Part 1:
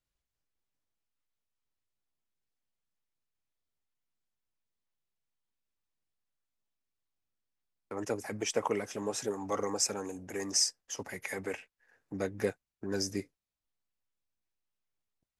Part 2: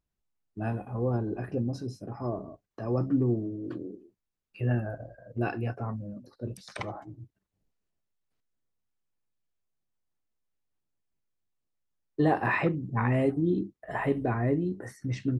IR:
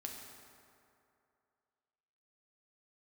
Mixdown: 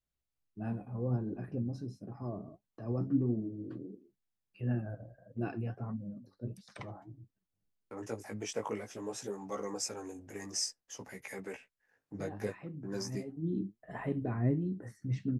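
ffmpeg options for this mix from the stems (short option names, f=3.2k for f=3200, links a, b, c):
-filter_complex "[0:a]flanger=delay=15:depth=4.3:speed=0.53,volume=-4dB,asplit=2[a][b];[1:a]adynamicequalizer=threshold=0.00891:dfrequency=190:dqfactor=1.1:tfrequency=190:tqfactor=1.1:attack=5:release=100:ratio=0.375:range=3:mode=boostabove:tftype=bell,flanger=delay=3.3:depth=7.6:regen=60:speed=1.5:shape=triangular,volume=-7dB[c];[b]apad=whole_len=678702[d];[c][d]sidechaincompress=threshold=-50dB:ratio=16:attack=12:release=418[e];[a][e]amix=inputs=2:normalize=0,equalizer=f=130:t=o:w=2.9:g=4"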